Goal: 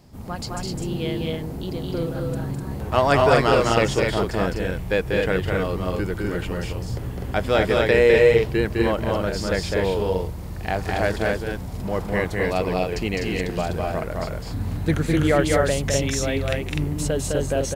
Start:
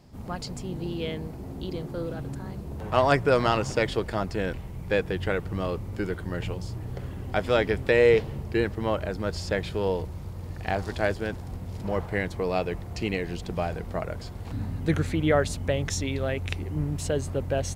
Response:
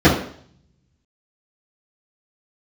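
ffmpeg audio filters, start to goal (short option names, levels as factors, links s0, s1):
-af "highshelf=f=8600:g=6.5,aecho=1:1:207|250.7:0.708|0.708,volume=1.33"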